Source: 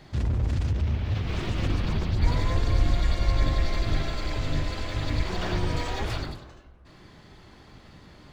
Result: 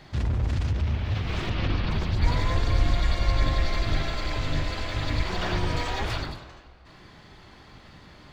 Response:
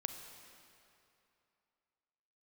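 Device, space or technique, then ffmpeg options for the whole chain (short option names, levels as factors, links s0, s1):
filtered reverb send: -filter_complex "[0:a]asplit=3[s0][s1][s2];[s0]afade=t=out:st=1.49:d=0.02[s3];[s1]lowpass=f=5200:w=0.5412,lowpass=f=5200:w=1.3066,afade=t=in:st=1.49:d=0.02,afade=t=out:st=1.9:d=0.02[s4];[s2]afade=t=in:st=1.9:d=0.02[s5];[s3][s4][s5]amix=inputs=3:normalize=0,asplit=2[s6][s7];[s7]highpass=550,lowpass=6400[s8];[1:a]atrim=start_sample=2205[s9];[s8][s9]afir=irnorm=-1:irlink=0,volume=0.531[s10];[s6][s10]amix=inputs=2:normalize=0"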